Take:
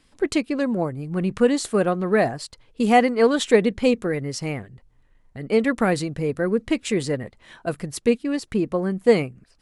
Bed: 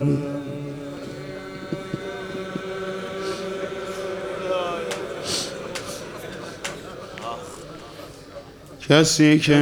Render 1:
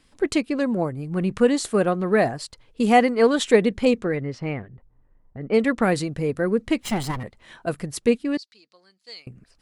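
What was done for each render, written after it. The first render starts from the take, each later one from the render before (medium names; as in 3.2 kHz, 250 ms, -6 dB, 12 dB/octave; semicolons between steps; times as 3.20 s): 3.85–5.83 s: level-controlled noise filter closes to 1 kHz, open at -15 dBFS; 6.81–7.23 s: comb filter that takes the minimum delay 0.97 ms; 8.37–9.27 s: band-pass filter 4.5 kHz, Q 5.2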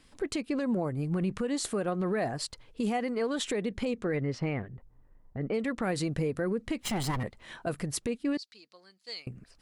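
compression 6:1, threshold -24 dBFS, peak gain reduction 13.5 dB; peak limiter -22 dBFS, peak gain reduction 8.5 dB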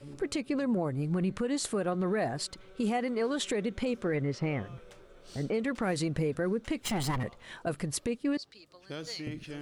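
add bed -26 dB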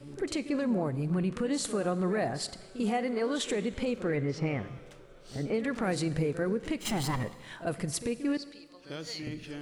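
reverse echo 45 ms -12.5 dB; Schroeder reverb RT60 1.5 s, combs from 33 ms, DRR 15 dB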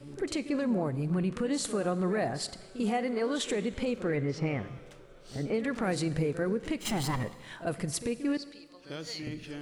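no audible change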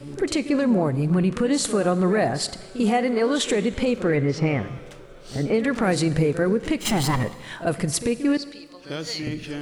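trim +9 dB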